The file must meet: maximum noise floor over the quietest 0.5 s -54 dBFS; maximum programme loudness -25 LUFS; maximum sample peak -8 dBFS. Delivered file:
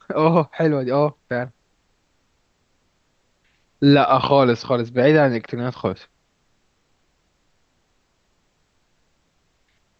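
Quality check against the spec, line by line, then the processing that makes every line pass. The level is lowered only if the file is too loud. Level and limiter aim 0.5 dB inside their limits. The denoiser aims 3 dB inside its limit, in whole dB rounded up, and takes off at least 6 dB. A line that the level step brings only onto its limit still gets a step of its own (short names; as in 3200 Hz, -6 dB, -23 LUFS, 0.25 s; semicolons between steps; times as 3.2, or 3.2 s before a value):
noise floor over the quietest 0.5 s -66 dBFS: OK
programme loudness -18.5 LUFS: fail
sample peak -4.5 dBFS: fail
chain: gain -7 dB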